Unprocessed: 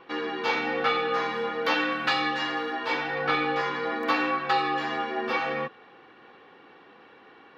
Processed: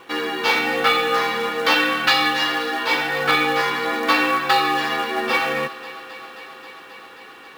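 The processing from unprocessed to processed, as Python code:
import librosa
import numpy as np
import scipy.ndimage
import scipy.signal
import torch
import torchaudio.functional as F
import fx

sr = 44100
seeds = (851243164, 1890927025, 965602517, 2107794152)

p1 = fx.high_shelf(x, sr, hz=2400.0, db=8.5)
p2 = fx.quant_companded(p1, sr, bits=4)
p3 = p1 + (p2 * 10.0 ** (-5.0 / 20.0))
p4 = fx.echo_thinned(p3, sr, ms=267, feedback_pct=84, hz=220.0, wet_db=-18.5)
y = p4 * 10.0 ** (1.0 / 20.0)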